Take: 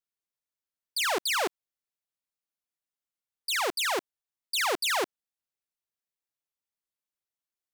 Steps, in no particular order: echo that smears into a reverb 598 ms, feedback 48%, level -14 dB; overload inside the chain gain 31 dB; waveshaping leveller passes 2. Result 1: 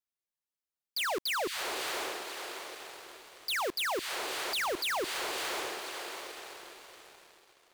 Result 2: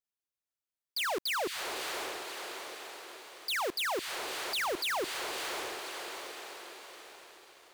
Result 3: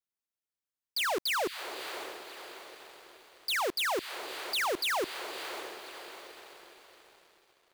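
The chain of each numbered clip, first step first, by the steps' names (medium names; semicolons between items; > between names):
echo that smears into a reverb > waveshaping leveller > overload inside the chain; echo that smears into a reverb > overload inside the chain > waveshaping leveller; overload inside the chain > echo that smears into a reverb > waveshaping leveller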